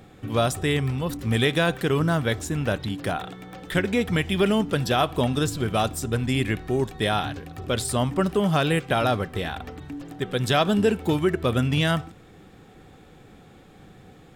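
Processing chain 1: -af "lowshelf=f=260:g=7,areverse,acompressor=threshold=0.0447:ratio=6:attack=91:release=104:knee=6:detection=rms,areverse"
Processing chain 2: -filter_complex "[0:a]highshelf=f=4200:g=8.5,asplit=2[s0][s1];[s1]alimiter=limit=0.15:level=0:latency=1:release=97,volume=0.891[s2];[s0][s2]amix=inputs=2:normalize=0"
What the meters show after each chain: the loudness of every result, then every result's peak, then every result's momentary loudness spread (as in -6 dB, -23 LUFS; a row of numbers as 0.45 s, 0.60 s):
-28.0 LUFS, -19.5 LUFS; -11.5 dBFS, -5.5 dBFS; 20 LU, 7 LU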